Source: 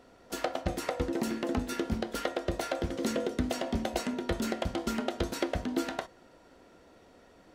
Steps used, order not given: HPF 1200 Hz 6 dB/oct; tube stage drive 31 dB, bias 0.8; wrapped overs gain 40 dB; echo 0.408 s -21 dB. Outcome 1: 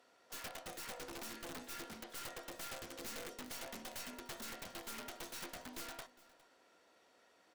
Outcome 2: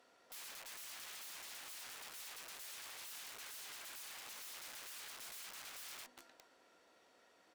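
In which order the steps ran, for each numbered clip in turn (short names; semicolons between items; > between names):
HPF > tube stage > wrapped overs > echo; echo > wrapped overs > HPF > tube stage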